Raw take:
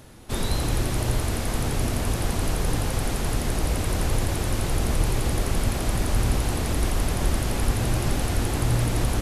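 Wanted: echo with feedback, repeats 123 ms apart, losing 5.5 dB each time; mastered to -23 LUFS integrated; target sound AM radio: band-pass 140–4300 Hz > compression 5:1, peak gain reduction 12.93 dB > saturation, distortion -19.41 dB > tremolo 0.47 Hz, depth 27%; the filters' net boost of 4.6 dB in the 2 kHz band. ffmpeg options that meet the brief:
-af "highpass=140,lowpass=4300,equalizer=f=2000:t=o:g=6,aecho=1:1:123|246|369|492|615|738|861:0.531|0.281|0.149|0.079|0.0419|0.0222|0.0118,acompressor=threshold=0.0158:ratio=5,asoftclip=threshold=0.0282,tremolo=f=0.47:d=0.27,volume=7.5"

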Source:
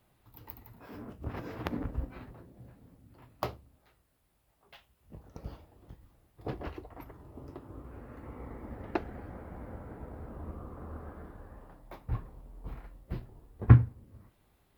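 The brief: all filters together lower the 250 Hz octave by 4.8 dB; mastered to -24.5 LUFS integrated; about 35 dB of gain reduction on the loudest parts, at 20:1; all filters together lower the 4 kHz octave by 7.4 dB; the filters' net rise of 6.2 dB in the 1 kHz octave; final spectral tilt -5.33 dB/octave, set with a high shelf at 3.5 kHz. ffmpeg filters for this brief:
-af "equalizer=f=250:t=o:g=-8,equalizer=f=1000:t=o:g=9,highshelf=f=3500:g=-4.5,equalizer=f=4000:t=o:g=-8,acompressor=threshold=0.00447:ratio=20,volume=29.9"

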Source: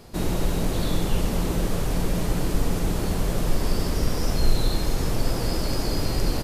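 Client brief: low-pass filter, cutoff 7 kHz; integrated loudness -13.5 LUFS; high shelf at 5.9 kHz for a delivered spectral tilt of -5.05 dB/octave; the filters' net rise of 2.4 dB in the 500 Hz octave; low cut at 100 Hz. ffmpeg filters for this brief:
-af "highpass=100,lowpass=7000,equalizer=f=500:t=o:g=3,highshelf=f=5900:g=5,volume=5.01"

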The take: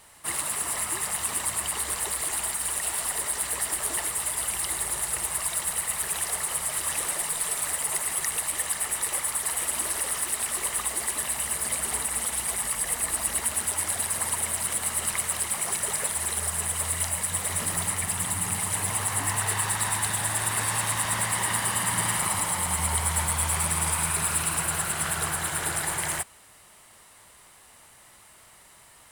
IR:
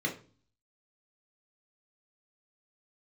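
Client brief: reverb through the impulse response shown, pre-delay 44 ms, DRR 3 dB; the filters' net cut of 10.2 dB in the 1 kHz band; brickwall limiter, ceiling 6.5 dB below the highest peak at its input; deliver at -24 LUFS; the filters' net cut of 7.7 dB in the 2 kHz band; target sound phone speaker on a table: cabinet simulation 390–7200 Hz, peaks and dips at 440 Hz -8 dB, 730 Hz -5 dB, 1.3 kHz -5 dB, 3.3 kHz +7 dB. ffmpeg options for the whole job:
-filter_complex "[0:a]equalizer=f=1000:t=o:g=-7,equalizer=f=2000:t=o:g=-7,alimiter=limit=0.15:level=0:latency=1,asplit=2[s0][s1];[1:a]atrim=start_sample=2205,adelay=44[s2];[s1][s2]afir=irnorm=-1:irlink=0,volume=0.355[s3];[s0][s3]amix=inputs=2:normalize=0,highpass=f=390:w=0.5412,highpass=f=390:w=1.3066,equalizer=f=440:t=q:w=4:g=-8,equalizer=f=730:t=q:w=4:g=-5,equalizer=f=1300:t=q:w=4:g=-5,equalizer=f=3300:t=q:w=4:g=7,lowpass=f=7200:w=0.5412,lowpass=f=7200:w=1.3066,volume=3.16"

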